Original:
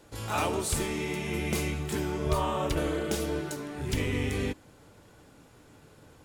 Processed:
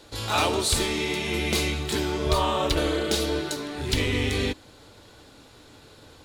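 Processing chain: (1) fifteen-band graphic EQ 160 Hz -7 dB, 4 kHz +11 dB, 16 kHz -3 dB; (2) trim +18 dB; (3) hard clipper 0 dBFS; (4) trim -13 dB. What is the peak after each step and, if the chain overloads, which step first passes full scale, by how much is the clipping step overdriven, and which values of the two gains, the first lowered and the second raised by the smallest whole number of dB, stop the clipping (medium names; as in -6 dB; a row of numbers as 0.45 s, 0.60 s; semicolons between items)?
-12.5 dBFS, +5.5 dBFS, 0.0 dBFS, -13.0 dBFS; step 2, 5.5 dB; step 2 +12 dB, step 4 -7 dB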